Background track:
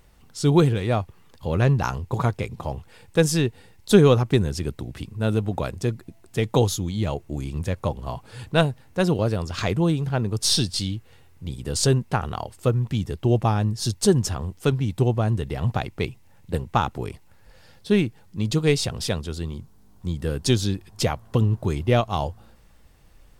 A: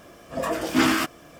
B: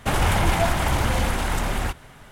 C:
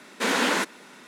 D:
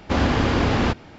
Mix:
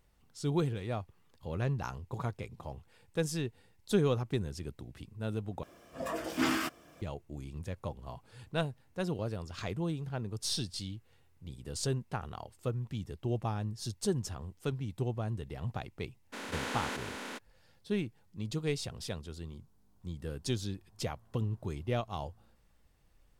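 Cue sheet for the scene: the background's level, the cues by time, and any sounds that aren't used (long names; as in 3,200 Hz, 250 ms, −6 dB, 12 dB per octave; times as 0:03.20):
background track −13.5 dB
0:05.63: overwrite with A −10 dB
0:16.32: mix in C −18 dB, fades 0.02 s + compressor on every frequency bin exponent 0.2
not used: B, D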